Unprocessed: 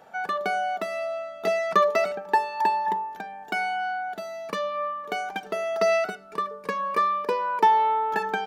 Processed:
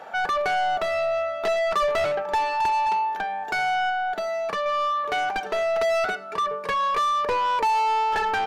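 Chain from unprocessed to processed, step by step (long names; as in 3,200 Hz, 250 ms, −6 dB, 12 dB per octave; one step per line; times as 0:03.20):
0:03.89–0:04.66: downward compressor, threshold −31 dBFS, peak gain reduction 6 dB
mid-hump overdrive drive 28 dB, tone 2,500 Hz, clips at −7.5 dBFS
level −8 dB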